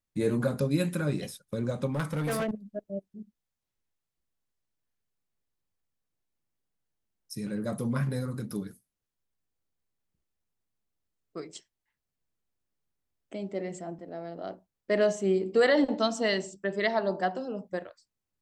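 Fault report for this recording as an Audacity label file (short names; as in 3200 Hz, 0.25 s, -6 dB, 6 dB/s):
1.920000	2.510000	clipped -26 dBFS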